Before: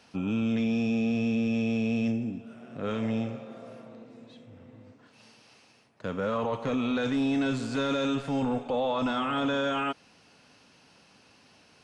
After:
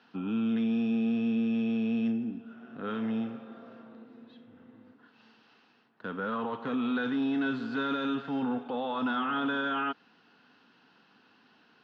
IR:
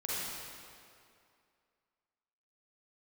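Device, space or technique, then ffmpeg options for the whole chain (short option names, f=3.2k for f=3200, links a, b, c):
kitchen radio: -af "highpass=210,equalizer=f=230:t=q:w=4:g=4,equalizer=f=580:t=q:w=4:g=-10,equalizer=f=1.5k:t=q:w=4:g=6,equalizer=f=2.3k:t=q:w=4:g=-8,lowpass=f=3.8k:w=0.5412,lowpass=f=3.8k:w=1.3066,volume=-2dB"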